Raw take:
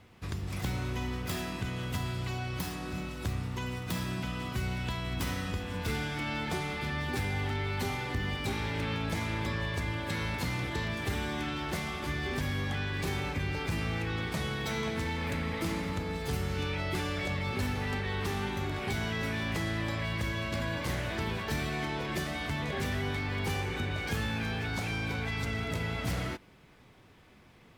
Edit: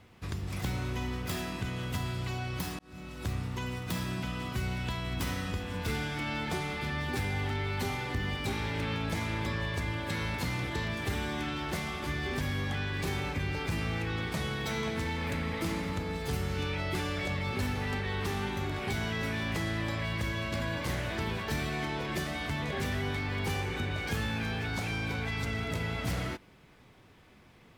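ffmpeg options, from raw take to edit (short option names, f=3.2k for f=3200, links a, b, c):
-filter_complex "[0:a]asplit=2[a][b];[a]atrim=end=2.79,asetpts=PTS-STARTPTS,afade=t=out:st=2.786:d=0.004:c=hsin[c];[b]atrim=start=2.79,asetpts=PTS-STARTPTS,afade=t=in:d=0.52[d];[c][d]concat=n=2:v=0:a=1"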